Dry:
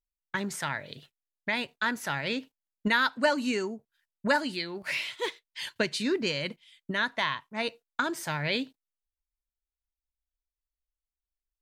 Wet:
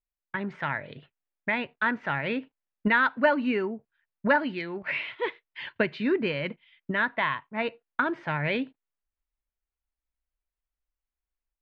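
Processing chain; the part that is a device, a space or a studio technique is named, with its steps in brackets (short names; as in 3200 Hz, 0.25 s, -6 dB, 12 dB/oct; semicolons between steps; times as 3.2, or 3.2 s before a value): action camera in a waterproof case (LPF 2600 Hz 24 dB/oct; AGC gain up to 4.5 dB; gain -1.5 dB; AAC 128 kbps 48000 Hz)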